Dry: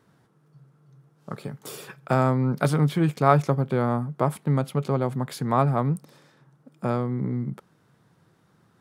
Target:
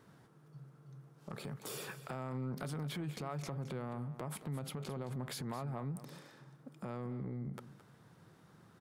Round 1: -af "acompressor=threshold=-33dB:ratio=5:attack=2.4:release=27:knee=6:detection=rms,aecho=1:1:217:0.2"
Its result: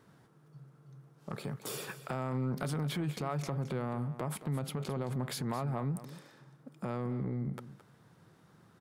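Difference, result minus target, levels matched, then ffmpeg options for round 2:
compressor: peak gain reduction -6 dB
-af "acompressor=threshold=-40.5dB:ratio=5:attack=2.4:release=27:knee=6:detection=rms,aecho=1:1:217:0.2"

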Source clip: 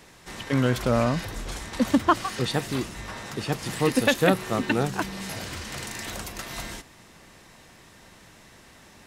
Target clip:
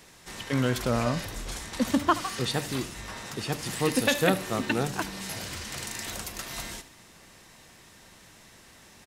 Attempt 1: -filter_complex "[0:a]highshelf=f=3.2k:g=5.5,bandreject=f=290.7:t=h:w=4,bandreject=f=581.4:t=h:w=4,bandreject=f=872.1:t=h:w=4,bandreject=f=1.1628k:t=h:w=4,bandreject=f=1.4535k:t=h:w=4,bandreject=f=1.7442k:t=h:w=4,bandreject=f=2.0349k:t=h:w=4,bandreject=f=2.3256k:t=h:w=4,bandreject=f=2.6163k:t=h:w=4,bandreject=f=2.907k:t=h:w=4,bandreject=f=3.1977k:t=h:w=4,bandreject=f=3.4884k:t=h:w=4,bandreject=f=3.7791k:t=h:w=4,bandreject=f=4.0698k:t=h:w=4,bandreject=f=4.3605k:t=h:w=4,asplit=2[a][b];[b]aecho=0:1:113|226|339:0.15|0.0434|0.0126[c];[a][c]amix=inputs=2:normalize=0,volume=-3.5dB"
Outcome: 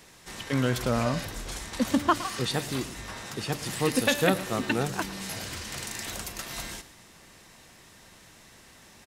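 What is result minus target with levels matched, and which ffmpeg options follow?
echo 38 ms late
-filter_complex "[0:a]highshelf=f=3.2k:g=5.5,bandreject=f=290.7:t=h:w=4,bandreject=f=581.4:t=h:w=4,bandreject=f=872.1:t=h:w=4,bandreject=f=1.1628k:t=h:w=4,bandreject=f=1.4535k:t=h:w=4,bandreject=f=1.7442k:t=h:w=4,bandreject=f=2.0349k:t=h:w=4,bandreject=f=2.3256k:t=h:w=4,bandreject=f=2.6163k:t=h:w=4,bandreject=f=2.907k:t=h:w=4,bandreject=f=3.1977k:t=h:w=4,bandreject=f=3.4884k:t=h:w=4,bandreject=f=3.7791k:t=h:w=4,bandreject=f=4.0698k:t=h:w=4,bandreject=f=4.3605k:t=h:w=4,asplit=2[a][b];[b]aecho=0:1:75|150|225:0.15|0.0434|0.0126[c];[a][c]amix=inputs=2:normalize=0,volume=-3.5dB"

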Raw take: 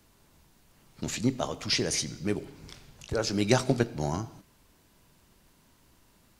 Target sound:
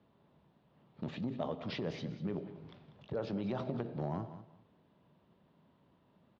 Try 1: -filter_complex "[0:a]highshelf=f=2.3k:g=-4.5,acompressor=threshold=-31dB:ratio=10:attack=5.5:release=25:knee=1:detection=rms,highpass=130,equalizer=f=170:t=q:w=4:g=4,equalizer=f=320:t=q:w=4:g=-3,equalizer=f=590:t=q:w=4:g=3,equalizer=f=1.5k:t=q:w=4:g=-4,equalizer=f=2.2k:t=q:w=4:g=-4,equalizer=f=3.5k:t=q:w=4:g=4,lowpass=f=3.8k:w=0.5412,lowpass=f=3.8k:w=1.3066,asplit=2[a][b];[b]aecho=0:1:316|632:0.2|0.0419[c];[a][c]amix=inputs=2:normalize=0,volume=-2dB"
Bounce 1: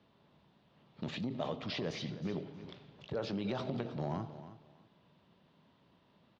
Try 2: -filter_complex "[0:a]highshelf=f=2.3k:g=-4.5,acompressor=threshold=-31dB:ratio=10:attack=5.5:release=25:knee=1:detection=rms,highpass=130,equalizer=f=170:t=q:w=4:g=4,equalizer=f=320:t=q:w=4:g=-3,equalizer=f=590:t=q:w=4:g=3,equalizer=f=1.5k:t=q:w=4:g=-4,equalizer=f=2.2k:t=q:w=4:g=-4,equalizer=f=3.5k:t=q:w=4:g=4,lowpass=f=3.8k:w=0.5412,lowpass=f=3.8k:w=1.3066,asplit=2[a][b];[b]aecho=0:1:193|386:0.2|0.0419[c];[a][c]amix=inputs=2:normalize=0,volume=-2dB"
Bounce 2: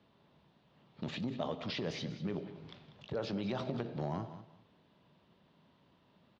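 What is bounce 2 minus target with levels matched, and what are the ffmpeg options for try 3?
4000 Hz band +5.5 dB
-filter_complex "[0:a]highshelf=f=2.3k:g=-16.5,acompressor=threshold=-31dB:ratio=10:attack=5.5:release=25:knee=1:detection=rms,highpass=130,equalizer=f=170:t=q:w=4:g=4,equalizer=f=320:t=q:w=4:g=-3,equalizer=f=590:t=q:w=4:g=3,equalizer=f=1.5k:t=q:w=4:g=-4,equalizer=f=2.2k:t=q:w=4:g=-4,equalizer=f=3.5k:t=q:w=4:g=4,lowpass=f=3.8k:w=0.5412,lowpass=f=3.8k:w=1.3066,asplit=2[a][b];[b]aecho=0:1:193|386:0.2|0.0419[c];[a][c]amix=inputs=2:normalize=0,volume=-2dB"

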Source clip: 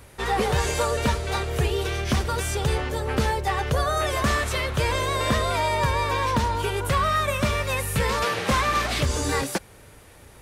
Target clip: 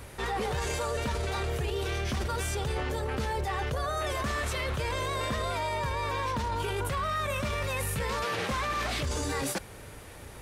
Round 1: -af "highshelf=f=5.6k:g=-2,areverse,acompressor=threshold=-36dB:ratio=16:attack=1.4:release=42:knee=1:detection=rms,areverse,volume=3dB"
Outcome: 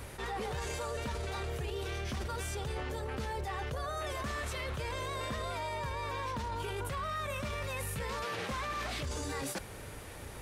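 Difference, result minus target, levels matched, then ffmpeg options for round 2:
compressor: peak gain reduction +6 dB
-af "highshelf=f=5.6k:g=-2,areverse,acompressor=threshold=-29.5dB:ratio=16:attack=1.4:release=42:knee=1:detection=rms,areverse,volume=3dB"

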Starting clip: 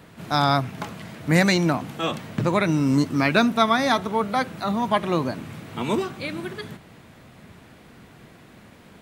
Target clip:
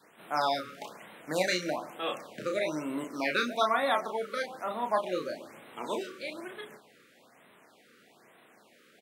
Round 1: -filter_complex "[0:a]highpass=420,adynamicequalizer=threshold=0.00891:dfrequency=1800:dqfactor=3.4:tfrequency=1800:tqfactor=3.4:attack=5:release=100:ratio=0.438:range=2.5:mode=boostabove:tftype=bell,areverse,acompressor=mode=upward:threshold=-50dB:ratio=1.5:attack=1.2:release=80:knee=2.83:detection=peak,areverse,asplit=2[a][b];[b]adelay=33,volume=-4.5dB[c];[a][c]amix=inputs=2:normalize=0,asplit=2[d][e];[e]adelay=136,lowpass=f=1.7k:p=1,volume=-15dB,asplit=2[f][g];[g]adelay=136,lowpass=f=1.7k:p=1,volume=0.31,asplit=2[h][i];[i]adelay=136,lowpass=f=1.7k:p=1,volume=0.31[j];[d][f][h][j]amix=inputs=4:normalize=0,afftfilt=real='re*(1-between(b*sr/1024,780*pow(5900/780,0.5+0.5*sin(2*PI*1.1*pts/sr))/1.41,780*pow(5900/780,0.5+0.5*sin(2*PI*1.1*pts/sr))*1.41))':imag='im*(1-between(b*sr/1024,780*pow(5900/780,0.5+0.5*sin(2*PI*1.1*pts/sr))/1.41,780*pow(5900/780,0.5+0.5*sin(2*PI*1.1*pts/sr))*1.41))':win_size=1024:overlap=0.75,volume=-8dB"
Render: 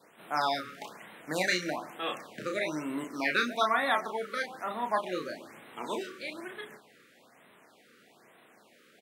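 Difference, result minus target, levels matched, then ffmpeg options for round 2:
500 Hz band -3.0 dB
-filter_complex "[0:a]highpass=420,adynamicequalizer=threshold=0.00891:dfrequency=560:dqfactor=3.4:tfrequency=560:tqfactor=3.4:attack=5:release=100:ratio=0.438:range=2.5:mode=boostabove:tftype=bell,areverse,acompressor=mode=upward:threshold=-50dB:ratio=1.5:attack=1.2:release=80:knee=2.83:detection=peak,areverse,asplit=2[a][b];[b]adelay=33,volume=-4.5dB[c];[a][c]amix=inputs=2:normalize=0,asplit=2[d][e];[e]adelay=136,lowpass=f=1.7k:p=1,volume=-15dB,asplit=2[f][g];[g]adelay=136,lowpass=f=1.7k:p=1,volume=0.31,asplit=2[h][i];[i]adelay=136,lowpass=f=1.7k:p=1,volume=0.31[j];[d][f][h][j]amix=inputs=4:normalize=0,afftfilt=real='re*(1-between(b*sr/1024,780*pow(5900/780,0.5+0.5*sin(2*PI*1.1*pts/sr))/1.41,780*pow(5900/780,0.5+0.5*sin(2*PI*1.1*pts/sr))*1.41))':imag='im*(1-between(b*sr/1024,780*pow(5900/780,0.5+0.5*sin(2*PI*1.1*pts/sr))/1.41,780*pow(5900/780,0.5+0.5*sin(2*PI*1.1*pts/sr))*1.41))':win_size=1024:overlap=0.75,volume=-8dB"

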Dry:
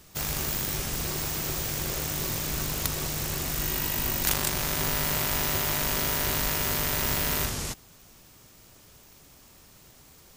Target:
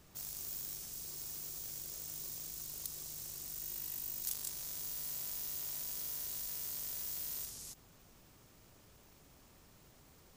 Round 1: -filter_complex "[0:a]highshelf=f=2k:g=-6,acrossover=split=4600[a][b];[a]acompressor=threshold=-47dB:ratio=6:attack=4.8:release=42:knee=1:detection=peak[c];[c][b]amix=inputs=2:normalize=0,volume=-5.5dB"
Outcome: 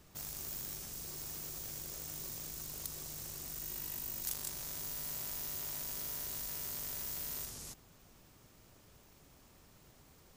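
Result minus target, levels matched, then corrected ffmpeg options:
compressor: peak gain reduction -6.5 dB
-filter_complex "[0:a]highshelf=f=2k:g=-6,acrossover=split=4600[a][b];[a]acompressor=threshold=-54.5dB:ratio=6:attack=4.8:release=42:knee=1:detection=peak[c];[c][b]amix=inputs=2:normalize=0,volume=-5.5dB"

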